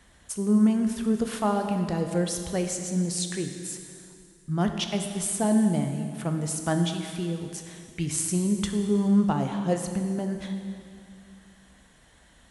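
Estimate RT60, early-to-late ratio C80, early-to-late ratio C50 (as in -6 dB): 2.4 s, 7.5 dB, 6.5 dB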